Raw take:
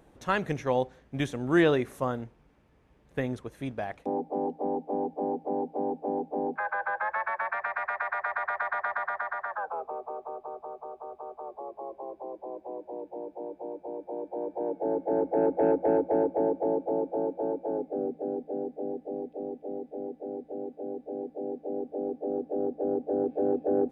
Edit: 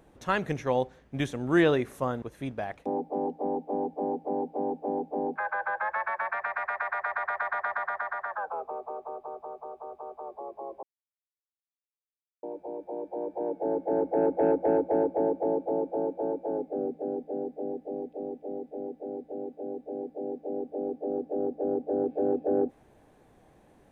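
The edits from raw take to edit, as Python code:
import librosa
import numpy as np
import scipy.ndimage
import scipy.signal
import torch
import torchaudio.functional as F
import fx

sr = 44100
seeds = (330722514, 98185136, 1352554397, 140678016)

y = fx.edit(x, sr, fx.cut(start_s=2.22, length_s=1.2),
    fx.silence(start_s=12.03, length_s=1.6), tone=tone)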